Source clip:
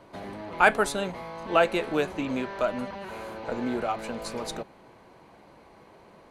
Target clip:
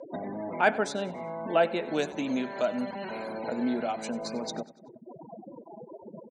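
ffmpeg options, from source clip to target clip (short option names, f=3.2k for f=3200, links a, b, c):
-filter_complex "[0:a]asettb=1/sr,asplit=3[a][b][c];[a]atrim=end=1.884[d];[b]atrim=start=1.88:end=4.09,asetpts=PTS-STARTPTS,afade=t=in:d=0.004:c=qsin,afade=t=out:st=2.206:d=0.004:c=qsin,aemphasis=mode=production:type=75kf[e];[c]atrim=start=4.086[f];[d][e]acrossfade=d=0.004:c1=hsin:c2=qsin[g];[g][f]acrossfade=d=0.004:c1=qsin:c2=hsin,afftfilt=real='re*gte(hypot(re,im),0.0112)':imag='im*gte(hypot(re,im),0.0112)':win_size=1024:overlap=0.75,acompressor=mode=upward:threshold=-26dB:ratio=2.5,highpass=150,equalizer=f=160:t=q:w=4:g=3,equalizer=f=240:t=q:w=4:g=7,equalizer=f=660:t=q:w=4:g=4,equalizer=f=1.2k:t=q:w=4:g=-7,equalizer=f=2.6k:t=q:w=4:g=-3,equalizer=f=5.6k:t=q:w=4:g=6,lowpass=f=7.4k:w=0.5412,lowpass=f=7.4k:w=1.3066,aecho=1:1:95|190|285|380:0.126|0.0567|0.0255|0.0115,volume=-4dB"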